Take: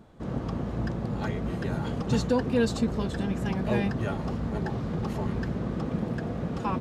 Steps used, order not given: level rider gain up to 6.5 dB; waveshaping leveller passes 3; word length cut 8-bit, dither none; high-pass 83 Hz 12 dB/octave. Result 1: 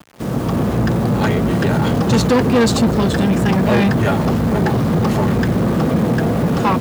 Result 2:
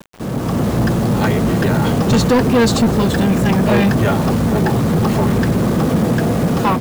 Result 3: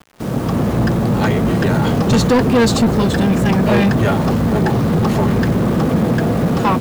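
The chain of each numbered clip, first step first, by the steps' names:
level rider > word length cut > waveshaping leveller > high-pass; high-pass > word length cut > waveshaping leveller > level rider; level rider > word length cut > high-pass > waveshaping leveller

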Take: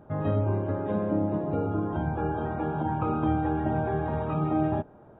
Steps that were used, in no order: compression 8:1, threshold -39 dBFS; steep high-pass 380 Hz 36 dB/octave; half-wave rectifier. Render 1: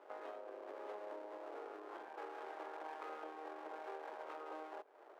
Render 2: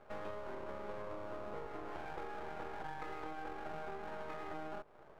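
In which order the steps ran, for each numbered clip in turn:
half-wave rectifier > compression > steep high-pass; steep high-pass > half-wave rectifier > compression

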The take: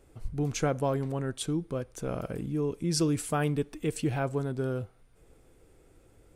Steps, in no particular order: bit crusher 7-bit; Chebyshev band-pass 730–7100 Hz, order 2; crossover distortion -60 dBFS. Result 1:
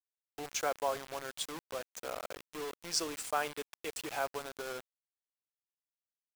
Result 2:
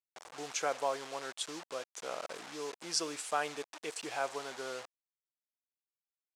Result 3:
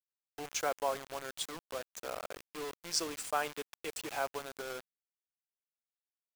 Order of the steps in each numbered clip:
crossover distortion > Chebyshev band-pass > bit crusher; crossover distortion > bit crusher > Chebyshev band-pass; Chebyshev band-pass > crossover distortion > bit crusher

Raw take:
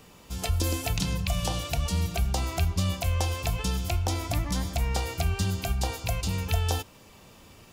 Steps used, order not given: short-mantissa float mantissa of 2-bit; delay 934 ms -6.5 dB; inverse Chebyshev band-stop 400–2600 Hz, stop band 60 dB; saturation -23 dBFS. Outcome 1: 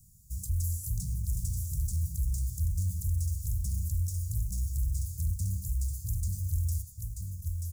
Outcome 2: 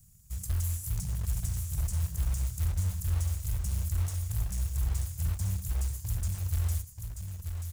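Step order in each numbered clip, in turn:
short-mantissa float > delay > saturation > inverse Chebyshev band-stop; saturation > inverse Chebyshev band-stop > short-mantissa float > delay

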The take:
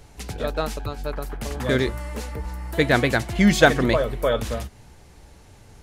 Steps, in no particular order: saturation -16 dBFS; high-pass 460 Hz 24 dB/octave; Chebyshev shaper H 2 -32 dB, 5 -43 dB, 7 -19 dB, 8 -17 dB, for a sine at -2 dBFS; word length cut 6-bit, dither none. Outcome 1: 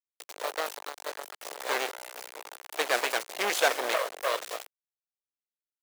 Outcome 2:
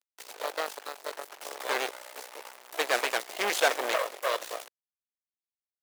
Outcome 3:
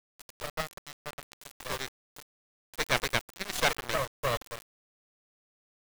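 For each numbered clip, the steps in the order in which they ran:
Chebyshev shaper > saturation > word length cut > high-pass; word length cut > Chebyshev shaper > saturation > high-pass; saturation > high-pass > Chebyshev shaper > word length cut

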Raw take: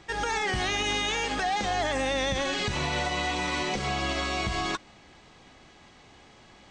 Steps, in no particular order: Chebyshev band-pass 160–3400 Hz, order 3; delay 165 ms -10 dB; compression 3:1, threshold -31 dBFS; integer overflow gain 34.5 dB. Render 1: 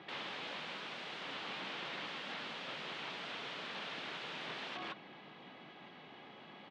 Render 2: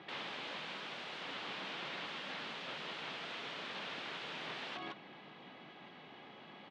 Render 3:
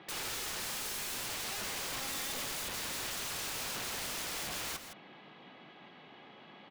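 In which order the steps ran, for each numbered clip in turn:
delay > compression > integer overflow > Chebyshev band-pass; compression > delay > integer overflow > Chebyshev band-pass; compression > Chebyshev band-pass > integer overflow > delay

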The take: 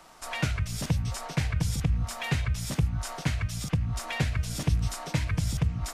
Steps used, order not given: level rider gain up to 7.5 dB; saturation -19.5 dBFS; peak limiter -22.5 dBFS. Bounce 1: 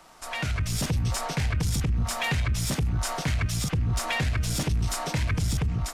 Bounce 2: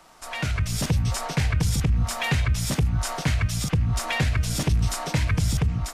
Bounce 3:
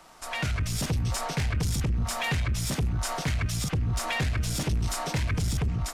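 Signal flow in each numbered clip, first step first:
peak limiter > level rider > saturation; saturation > peak limiter > level rider; level rider > saturation > peak limiter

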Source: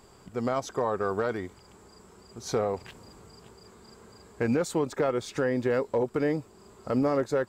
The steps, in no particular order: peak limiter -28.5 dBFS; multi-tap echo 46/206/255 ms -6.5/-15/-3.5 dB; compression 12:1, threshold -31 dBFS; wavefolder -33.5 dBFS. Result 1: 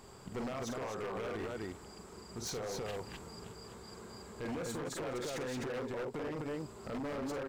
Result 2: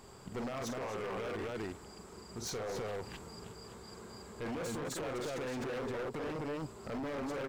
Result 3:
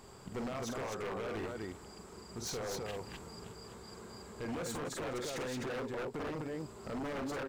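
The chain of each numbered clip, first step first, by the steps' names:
compression > multi-tap echo > peak limiter > wavefolder; multi-tap echo > peak limiter > wavefolder > compression; compression > peak limiter > multi-tap echo > wavefolder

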